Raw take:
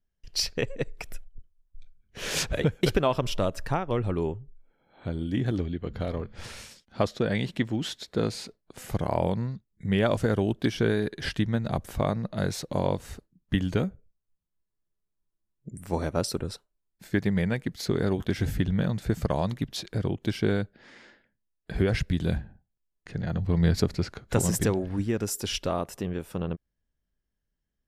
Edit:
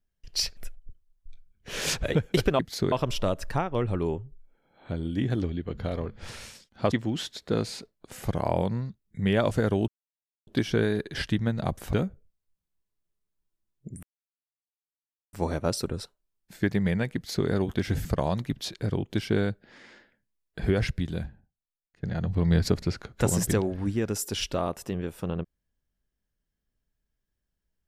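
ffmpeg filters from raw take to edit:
ffmpeg -i in.wav -filter_complex "[0:a]asplit=10[link_01][link_02][link_03][link_04][link_05][link_06][link_07][link_08][link_09][link_10];[link_01]atrim=end=0.572[link_11];[link_02]atrim=start=1.058:end=3.082[link_12];[link_03]atrim=start=17.658:end=17.992[link_13];[link_04]atrim=start=3.078:end=7.082[link_14];[link_05]atrim=start=7.578:end=10.54,asetpts=PTS-STARTPTS,afade=type=out:start_time=2.958:duration=0.004:curve=hsin,apad=pad_dur=0.59[link_15];[link_06]atrim=start=10.54:end=12.002,asetpts=PTS-STARTPTS,afade=type=in:duration=0.004:curve=hsin[link_16];[link_07]atrim=start=13.738:end=15.84,asetpts=PTS-STARTPTS,afade=type=out:start_time=2.098:duration=0.004:curve=hsin,apad=pad_dur=1.3[link_17];[link_08]atrim=start=15.84:end=18.562,asetpts=PTS-STARTPTS,afade=type=in:duration=0.004:curve=hsin[link_18];[link_09]atrim=start=19.168:end=23.15,asetpts=PTS-STARTPTS,afade=type=out:start_time=2.752:duration=1.23:curve=qua:silence=0.112202[link_19];[link_10]atrim=start=23.15,asetpts=PTS-STARTPTS,afade=type=in:duration=0.004:curve=hsin:silence=0.112202[link_20];[link_11][link_12]acrossfade=duration=0.004:curve1=hsin:curve2=hsin[link_21];[link_21][link_13]acrossfade=duration=0.004:curve1=hsin:curve2=hsin[link_22];[link_22][link_14]acrossfade=duration=0.004:curve1=hsin:curve2=hsin[link_23];[link_15][link_16]concat=n=2:v=0:a=1[link_24];[link_23][link_24]acrossfade=duration=0.004:curve1=hsin:curve2=hsin[link_25];[link_17][link_18]concat=n=2:v=0:a=1[link_26];[link_25][link_26]acrossfade=duration=0.004:curve1=hsin:curve2=hsin[link_27];[link_19][link_20]concat=n=2:v=0:a=1[link_28];[link_27][link_28]acrossfade=duration=0.004:curve1=hsin:curve2=hsin" out.wav

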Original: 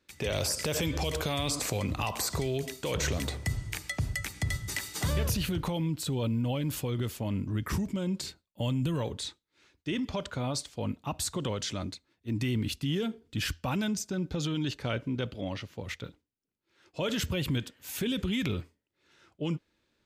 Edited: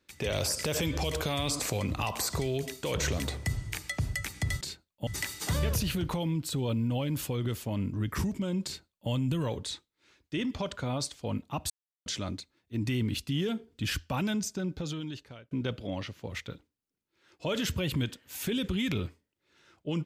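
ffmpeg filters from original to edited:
ffmpeg -i in.wav -filter_complex "[0:a]asplit=6[link_01][link_02][link_03][link_04][link_05][link_06];[link_01]atrim=end=4.612[link_07];[link_02]atrim=start=8.178:end=8.642[link_08];[link_03]atrim=start=4.608:end=11.24,asetpts=PTS-STARTPTS,afade=type=out:start_time=6.628:duration=0.004:curve=hsin[link_09];[link_04]atrim=start=11.24:end=11.6,asetpts=PTS-STARTPTS,volume=0[link_10];[link_05]atrim=start=11.6:end=15.05,asetpts=PTS-STARTPTS,afade=type=in:duration=0.004:curve=hsin,afade=type=out:start_time=2.49:duration=0.96[link_11];[link_06]atrim=start=15.05,asetpts=PTS-STARTPTS,afade=type=in:duration=0.004:curve=hsin[link_12];[link_07][link_08]acrossfade=duration=0.004:curve1=hsin:curve2=hsin[link_13];[link_09][link_10][link_11][link_12]concat=n=4:v=0:a=1[link_14];[link_13][link_14]acrossfade=duration=0.004:curve1=hsin:curve2=hsin" out.wav

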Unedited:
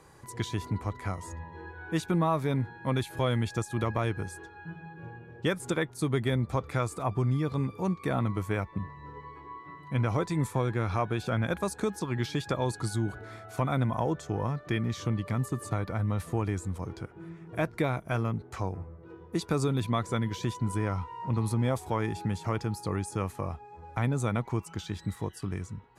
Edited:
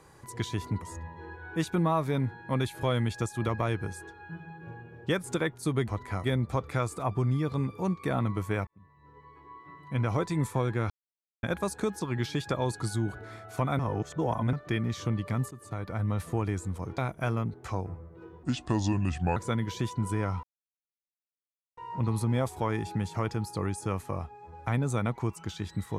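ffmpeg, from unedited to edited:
ffmpeg -i in.wav -filter_complex "[0:a]asplit=14[link_01][link_02][link_03][link_04][link_05][link_06][link_07][link_08][link_09][link_10][link_11][link_12][link_13][link_14];[link_01]atrim=end=0.822[link_15];[link_02]atrim=start=1.178:end=6.242[link_16];[link_03]atrim=start=0.818:end=1.182[link_17];[link_04]atrim=start=6.238:end=8.67,asetpts=PTS-STARTPTS,afade=type=out:start_time=2.428:duration=0.004:curve=hsin[link_18];[link_05]atrim=start=8.67:end=10.9,asetpts=PTS-STARTPTS,afade=type=in:duration=1.49,afade=type=out:start_time=2.226:duration=0.004:curve=hsin[link_19];[link_06]atrim=start=10.9:end=11.43,asetpts=PTS-STARTPTS,volume=0[link_20];[link_07]atrim=start=11.43:end=13.792,asetpts=PTS-STARTPTS,afade=type=in:duration=0.004:curve=hsin[link_21];[link_08]atrim=start=13.788:end=14.532,asetpts=PTS-STARTPTS,areverse[link_22];[link_09]atrim=start=14.528:end=15.51,asetpts=PTS-STARTPTS,afade=type=out:start_time=0.978:duration=0.004:curve=hsin:silence=0.16788[link_23];[link_10]atrim=start=15.51:end=16.982,asetpts=PTS-STARTPTS,afade=type=in:duration=0.55:silence=0.16788[link_24];[link_11]atrim=start=17.858:end=19.314[link_25];[link_12]atrim=start=19.31:end=20,asetpts=PTS-STARTPTS,asetrate=32634,aresample=44100,atrim=end_sample=41120,asetpts=PTS-STARTPTS[link_26];[link_13]atrim=start=19.996:end=21.07,asetpts=PTS-STARTPTS,afade=type=out:start_time=1.07:duration=0.004:curve=hsin,apad=pad_dur=1.34[link_27];[link_14]atrim=start=21.07,asetpts=PTS-STARTPTS,afade=type=in:duration=0.004:curve=hsin[link_28];[link_15][link_16]acrossfade=duration=0.004:curve1=hsin:curve2=hsin[link_29];[link_29][link_17]acrossfade=duration=0.004:curve1=hsin:curve2=hsin[link_30];[link_18][link_19][link_20][link_21]concat=n=4:v=0:a=1[link_31];[link_30][link_31]acrossfade=duration=0.004:curve1=hsin:curve2=hsin[link_32];[link_32][link_22]acrossfade=duration=0.004:curve1=hsin:curve2=hsin[link_33];[link_23][link_24]concat=n=2:v=0:a=1[link_34];[link_33][link_34]acrossfade=duration=0.004:curve1=hsin:curve2=hsin[link_35];[link_35][link_25]acrossfade=duration=0.004:curve1=hsin:curve2=hsin[link_36];[link_36][link_26]acrossfade=duration=0.004:curve1=hsin:curve2=hsin[link_37];[link_27][link_28]concat=n=2:v=0:a=1[link_38];[link_37][link_38]acrossfade=duration=0.004:curve1=hsin:curve2=hsin" out.wav

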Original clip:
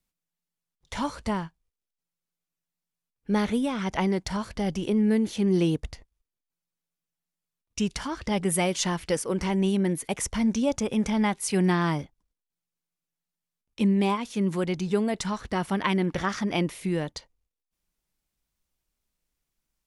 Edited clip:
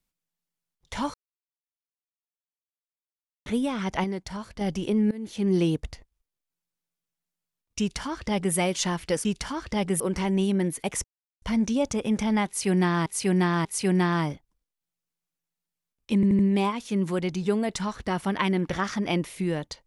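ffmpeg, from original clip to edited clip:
ffmpeg -i in.wav -filter_complex "[0:a]asplit=14[link_01][link_02][link_03][link_04][link_05][link_06][link_07][link_08][link_09][link_10][link_11][link_12][link_13][link_14];[link_01]atrim=end=1.14,asetpts=PTS-STARTPTS,afade=type=out:start_time=1.136:duration=0.004:curve=hsin[link_15];[link_02]atrim=start=1.14:end=3.46,asetpts=PTS-STARTPTS,volume=0[link_16];[link_03]atrim=start=3.46:end=4.042,asetpts=PTS-STARTPTS,afade=type=in:duration=0.004:curve=hsin[link_17];[link_04]atrim=start=4.038:end=4.612,asetpts=PTS-STARTPTS,volume=-5.5dB[link_18];[link_05]atrim=start=4.608:end=5.11,asetpts=PTS-STARTPTS,afade=type=out:start_time=0.498:duration=0.004:curve=hsin:silence=0.0630957[link_19];[link_06]atrim=start=5.11:end=9.252,asetpts=PTS-STARTPTS,afade=type=in:duration=0.39:silence=0.0630957[link_20];[link_07]atrim=start=7.798:end=8.552[link_21];[link_08]atrim=start=9.248:end=10.29,asetpts=PTS-STARTPTS,afade=type=out:start_time=1.038:duration=0.004:curve=hsin,apad=pad_dur=0.38[link_22];[link_09]atrim=start=10.29:end=11.932,asetpts=PTS-STARTPTS,afade=type=in:duration=0.004:curve=hsin[link_23];[link_10]atrim=start=11.338:end=11.932[link_24];[link_11]atrim=start=11.338:end=13.922[link_25];[link_12]atrim=start=13.838:end=13.922[link_26];[link_13]atrim=start=13.838:end=13.922[link_27];[link_14]atrim=start=13.838[link_28];[link_15][link_16][link_17]concat=n=3:v=0:a=1[link_29];[link_29][link_18]acrossfade=duration=0.004:curve1=hsin:curve2=hsin[link_30];[link_19][link_20]concat=n=2:v=0:a=1[link_31];[link_30][link_31]acrossfade=duration=0.004:curve1=hsin:curve2=hsin[link_32];[link_32][link_21]acrossfade=duration=0.004:curve1=hsin:curve2=hsin[link_33];[link_22][link_23]concat=n=2:v=0:a=1[link_34];[link_33][link_34]acrossfade=duration=0.004:curve1=hsin:curve2=hsin[link_35];[link_35][link_24]acrossfade=duration=0.004:curve1=hsin:curve2=hsin[link_36];[link_36][link_25]acrossfade=duration=0.004:curve1=hsin:curve2=hsin[link_37];[link_37][link_26]acrossfade=duration=0.004:curve1=hsin:curve2=hsin[link_38];[link_38][link_27]acrossfade=duration=0.004:curve1=hsin:curve2=hsin[link_39];[link_39][link_28]acrossfade=duration=0.004:curve1=hsin:curve2=hsin" out.wav

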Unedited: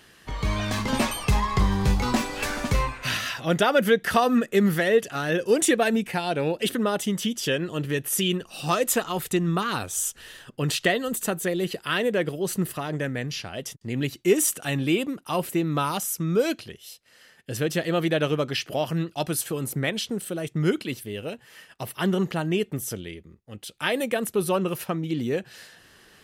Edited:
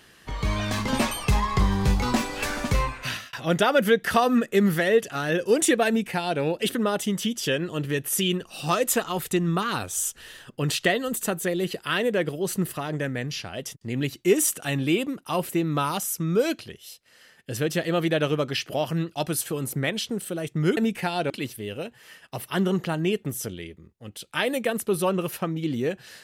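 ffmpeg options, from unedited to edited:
ffmpeg -i in.wav -filter_complex "[0:a]asplit=4[link_01][link_02][link_03][link_04];[link_01]atrim=end=3.33,asetpts=PTS-STARTPTS,afade=type=out:start_time=3:duration=0.33[link_05];[link_02]atrim=start=3.33:end=20.772,asetpts=PTS-STARTPTS,afade=type=in:duration=0.004:curve=hsin[link_06];[link_03]atrim=start=5.878:end=6.412[link_07];[link_04]atrim=start=20.768[link_08];[link_05][link_06]concat=n=2:v=0:a=1[link_09];[link_09][link_07]acrossfade=duration=0.004:curve1=hsin:curve2=hsin[link_10];[link_10][link_08]acrossfade=duration=0.004:curve1=hsin:curve2=hsin" out.wav

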